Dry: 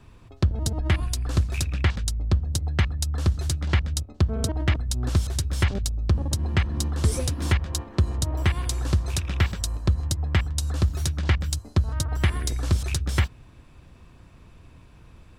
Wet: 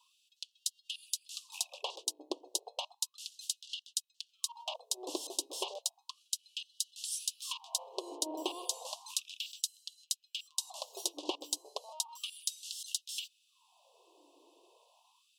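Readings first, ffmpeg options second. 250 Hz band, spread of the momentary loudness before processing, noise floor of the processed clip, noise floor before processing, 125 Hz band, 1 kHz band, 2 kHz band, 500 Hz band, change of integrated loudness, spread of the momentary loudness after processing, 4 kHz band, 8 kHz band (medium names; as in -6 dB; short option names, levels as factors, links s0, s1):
-18.0 dB, 2 LU, -77 dBFS, -50 dBFS, under -40 dB, -9.5 dB, -20.0 dB, -9.5 dB, -12.5 dB, 6 LU, -3.0 dB, -3.0 dB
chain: -af "asuperstop=centerf=1700:order=12:qfactor=0.98,afftfilt=real='re*gte(b*sr/1024,270*pow(2700/270,0.5+0.5*sin(2*PI*0.33*pts/sr)))':imag='im*gte(b*sr/1024,270*pow(2700/270,0.5+0.5*sin(2*PI*0.33*pts/sr)))':win_size=1024:overlap=0.75,volume=0.708"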